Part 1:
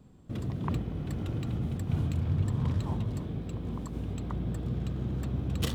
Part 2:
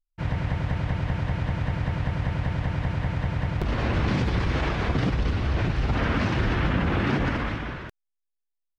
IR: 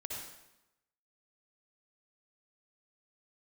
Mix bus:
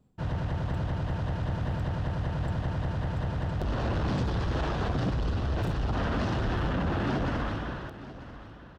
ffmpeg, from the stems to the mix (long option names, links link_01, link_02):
-filter_complex "[0:a]aeval=exprs='val(0)*pow(10,-18*(0.5-0.5*cos(2*PI*1.2*n/s))/20)':channel_layout=same,volume=-9.5dB,asplit=2[link_01][link_02];[link_02]volume=-13.5dB[link_03];[1:a]equalizer=frequency=2200:width_type=o:width=0.36:gain=-12.5,asoftclip=type=tanh:threshold=-22dB,volume=-1.5dB,asplit=2[link_04][link_05];[link_05]volume=-15dB[link_06];[link_03][link_06]amix=inputs=2:normalize=0,aecho=0:1:941|1882|2823|3764|4705:1|0.36|0.13|0.0467|0.0168[link_07];[link_01][link_04][link_07]amix=inputs=3:normalize=0,equalizer=frequency=680:width=1.9:gain=3"